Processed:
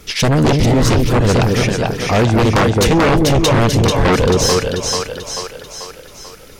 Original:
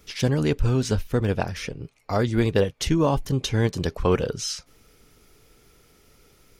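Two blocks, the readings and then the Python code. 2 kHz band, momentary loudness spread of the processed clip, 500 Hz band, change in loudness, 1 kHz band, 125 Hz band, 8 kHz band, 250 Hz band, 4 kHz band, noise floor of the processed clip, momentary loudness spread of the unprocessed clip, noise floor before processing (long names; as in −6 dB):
+14.0 dB, 12 LU, +10.5 dB, +10.5 dB, +14.0 dB, +10.0 dB, +14.0 dB, +10.5 dB, +13.5 dB, −38 dBFS, 8 LU, −59 dBFS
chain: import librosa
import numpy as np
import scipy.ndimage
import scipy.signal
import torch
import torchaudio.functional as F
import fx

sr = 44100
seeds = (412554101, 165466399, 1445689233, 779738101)

y = fx.echo_split(x, sr, split_hz=530.0, low_ms=215, high_ms=439, feedback_pct=52, wet_db=-4.0)
y = fx.fold_sine(y, sr, drive_db=13, ceiling_db=-5.5)
y = fx.spec_repair(y, sr, seeds[0], start_s=0.66, length_s=0.24, low_hz=930.0, high_hz=2100.0, source='both')
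y = y * 10.0 ** (-3.0 / 20.0)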